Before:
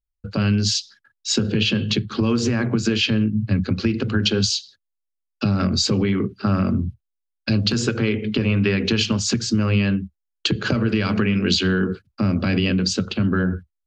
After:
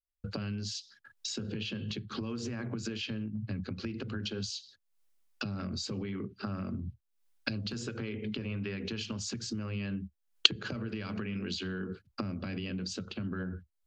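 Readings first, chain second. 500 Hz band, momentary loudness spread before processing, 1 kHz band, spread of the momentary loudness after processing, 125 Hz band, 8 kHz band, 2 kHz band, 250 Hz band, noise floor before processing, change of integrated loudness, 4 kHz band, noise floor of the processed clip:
-16.5 dB, 5 LU, -15.0 dB, 4 LU, -16.5 dB, -15.5 dB, -14.5 dB, -16.5 dB, -80 dBFS, -15.0 dB, -11.5 dB, -78 dBFS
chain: recorder AGC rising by 62 dB/s; gain -18 dB

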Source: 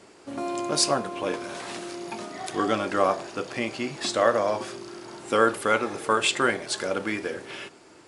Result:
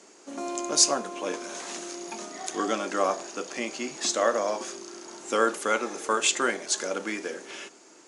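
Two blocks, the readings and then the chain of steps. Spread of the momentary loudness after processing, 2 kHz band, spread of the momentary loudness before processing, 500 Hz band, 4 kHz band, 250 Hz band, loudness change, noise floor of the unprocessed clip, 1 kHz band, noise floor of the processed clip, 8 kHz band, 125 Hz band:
15 LU, -3.0 dB, 14 LU, -3.0 dB, -0.5 dB, -3.5 dB, -1.5 dB, -52 dBFS, -3.0 dB, -53 dBFS, +6.0 dB, under -10 dB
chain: HPF 200 Hz 24 dB/oct; bell 6500 Hz +13.5 dB 0.46 oct; gain -3 dB

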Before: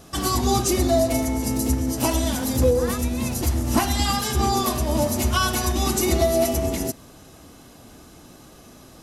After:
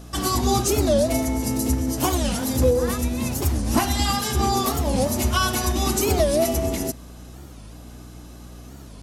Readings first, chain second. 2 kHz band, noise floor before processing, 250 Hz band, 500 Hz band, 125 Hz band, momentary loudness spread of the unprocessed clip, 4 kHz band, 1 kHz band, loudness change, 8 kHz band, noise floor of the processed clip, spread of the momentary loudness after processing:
0.0 dB, -47 dBFS, 0.0 dB, +0.5 dB, 0.0 dB, 4 LU, 0.0 dB, 0.0 dB, 0.0 dB, 0.0 dB, -41 dBFS, 5 LU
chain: hum 60 Hz, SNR 19 dB; record warp 45 rpm, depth 250 cents

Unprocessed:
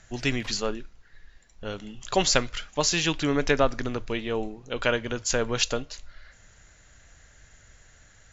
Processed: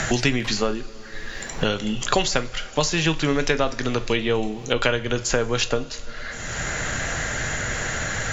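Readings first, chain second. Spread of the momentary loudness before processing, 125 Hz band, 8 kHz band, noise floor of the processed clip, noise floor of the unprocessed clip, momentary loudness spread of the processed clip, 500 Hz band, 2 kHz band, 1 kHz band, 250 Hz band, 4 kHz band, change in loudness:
14 LU, +7.0 dB, n/a, -35 dBFS, -56 dBFS, 12 LU, +4.0 dB, +6.5 dB, +4.5 dB, +5.0 dB, +3.5 dB, +2.5 dB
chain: two-slope reverb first 0.27 s, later 1.6 s, from -18 dB, DRR 9.5 dB; three-band squash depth 100%; gain +4 dB

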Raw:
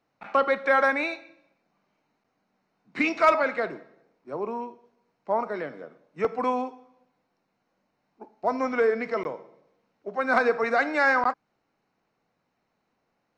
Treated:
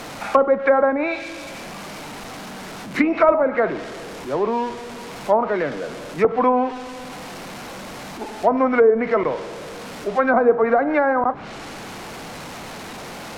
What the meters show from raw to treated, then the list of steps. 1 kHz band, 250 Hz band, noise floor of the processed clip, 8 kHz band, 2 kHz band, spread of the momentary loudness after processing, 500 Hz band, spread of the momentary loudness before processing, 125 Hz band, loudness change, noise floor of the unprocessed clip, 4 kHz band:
+5.5 dB, +10.0 dB, -35 dBFS, n/a, +0.5 dB, 18 LU, +8.5 dB, 18 LU, +13.5 dB, +6.0 dB, -76 dBFS, +7.5 dB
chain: zero-crossing step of -37 dBFS; treble ducked by the level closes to 750 Hz, closed at -19 dBFS; gain +8.5 dB

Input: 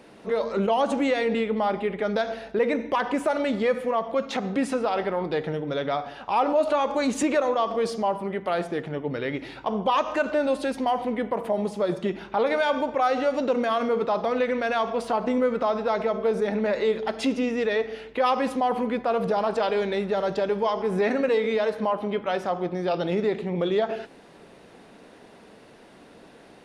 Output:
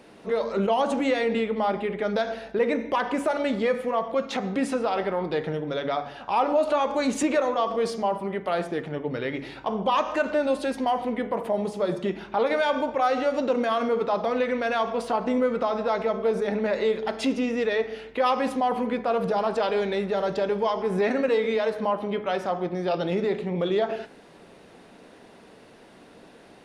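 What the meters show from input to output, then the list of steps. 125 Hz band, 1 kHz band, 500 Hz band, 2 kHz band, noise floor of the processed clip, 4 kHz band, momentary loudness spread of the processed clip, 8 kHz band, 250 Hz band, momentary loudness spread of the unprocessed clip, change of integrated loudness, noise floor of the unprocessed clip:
-0.5 dB, -0.5 dB, -0.5 dB, -0.5 dB, -51 dBFS, 0.0 dB, 5 LU, 0.0 dB, -0.5 dB, 5 LU, -0.5 dB, -50 dBFS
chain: de-hum 70.55 Hz, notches 34

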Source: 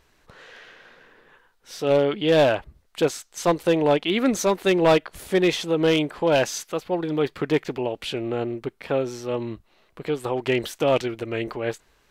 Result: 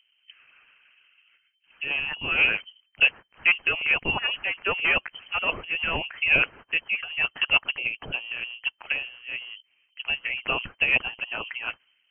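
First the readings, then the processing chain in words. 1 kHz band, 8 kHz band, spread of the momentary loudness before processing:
-7.0 dB, under -40 dB, 10 LU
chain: harmonic-percussive split harmonic -13 dB; low-pass opened by the level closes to 680 Hz, open at -22.5 dBFS; inverted band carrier 3100 Hz; gain +1.5 dB

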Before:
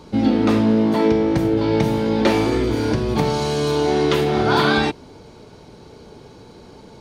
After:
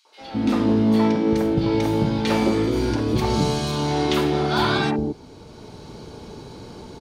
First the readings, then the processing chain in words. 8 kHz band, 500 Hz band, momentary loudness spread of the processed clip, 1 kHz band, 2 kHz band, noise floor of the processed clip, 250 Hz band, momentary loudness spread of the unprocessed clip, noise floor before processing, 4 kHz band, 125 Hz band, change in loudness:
-0.5 dB, -4.5 dB, 20 LU, -2.5 dB, -4.0 dB, -44 dBFS, -2.0 dB, 4 LU, -44 dBFS, -1.5 dB, -1.0 dB, -2.5 dB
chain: three bands offset in time highs, mids, lows 50/210 ms, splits 540/1900 Hz; AGC gain up to 12 dB; gain -7 dB

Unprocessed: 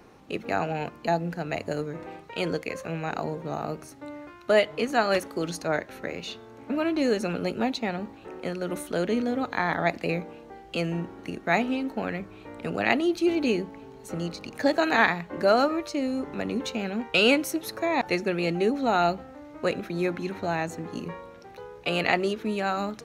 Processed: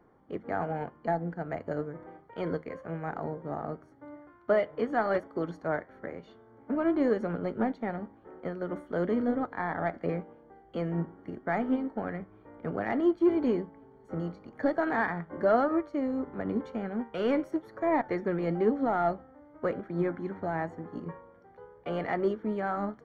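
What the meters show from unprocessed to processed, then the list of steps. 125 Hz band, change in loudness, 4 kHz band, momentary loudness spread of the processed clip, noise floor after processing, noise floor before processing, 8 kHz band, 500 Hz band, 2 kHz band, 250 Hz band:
-3.0 dB, -4.0 dB, under -20 dB, 14 LU, -58 dBFS, -48 dBFS, under -25 dB, -3.5 dB, -9.5 dB, -2.5 dB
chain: in parallel at +1 dB: limiter -18 dBFS, peak gain reduction 11 dB; on the sum: soft clip -10.5 dBFS, distortion -19 dB; flange 0.95 Hz, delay 5.7 ms, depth 7 ms, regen +85%; polynomial smoothing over 41 samples; upward expander 1.5:1, over -42 dBFS

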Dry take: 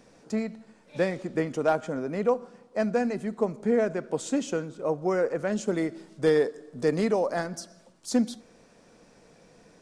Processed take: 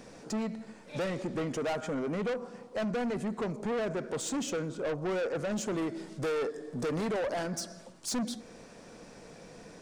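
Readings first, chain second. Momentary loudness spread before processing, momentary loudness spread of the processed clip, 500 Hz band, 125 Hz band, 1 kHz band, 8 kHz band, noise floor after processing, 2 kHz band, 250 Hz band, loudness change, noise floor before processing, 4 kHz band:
8 LU, 18 LU, -7.0 dB, -2.5 dB, -5.0 dB, +1.5 dB, -52 dBFS, -4.0 dB, -5.5 dB, -6.0 dB, -58 dBFS, +0.5 dB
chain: in parallel at 0 dB: compressor, threshold -35 dBFS, peak gain reduction 16 dB; on the sum: soft clip -29 dBFS, distortion -6 dB

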